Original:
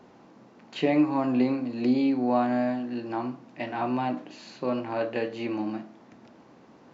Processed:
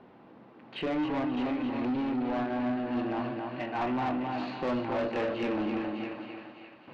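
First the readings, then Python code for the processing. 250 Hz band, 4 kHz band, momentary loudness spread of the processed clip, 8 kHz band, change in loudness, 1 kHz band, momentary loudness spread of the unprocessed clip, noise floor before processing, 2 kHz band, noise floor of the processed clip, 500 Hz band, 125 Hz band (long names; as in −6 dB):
−4.0 dB, −1.0 dB, 8 LU, can't be measured, −4.0 dB, −2.5 dB, 13 LU, −54 dBFS, −0.5 dB, −54 dBFS, −3.5 dB, −3.0 dB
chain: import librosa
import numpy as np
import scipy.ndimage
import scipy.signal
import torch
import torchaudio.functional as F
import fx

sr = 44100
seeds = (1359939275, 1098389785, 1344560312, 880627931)

p1 = 10.0 ** (-26.5 / 20.0) * (np.abs((x / 10.0 ** (-26.5 / 20.0) + 3.0) % 4.0 - 2.0) - 1.0)
p2 = x + (p1 * 10.0 ** (-5.0 / 20.0))
p3 = scipy.signal.sosfilt(scipy.signal.butter(4, 3500.0, 'lowpass', fs=sr, output='sos'), p2)
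p4 = fx.tremolo_random(p3, sr, seeds[0], hz=1.6, depth_pct=80)
p5 = p4 + fx.echo_thinned(p4, sr, ms=609, feedback_pct=35, hz=1200.0, wet_db=-7.0, dry=0)
p6 = fx.rider(p5, sr, range_db=4, speed_s=0.5)
p7 = fx.echo_feedback(p6, sr, ms=268, feedback_pct=35, wet_db=-5.0)
y = 10.0 ** (-25.5 / 20.0) * np.tanh(p7 / 10.0 ** (-25.5 / 20.0))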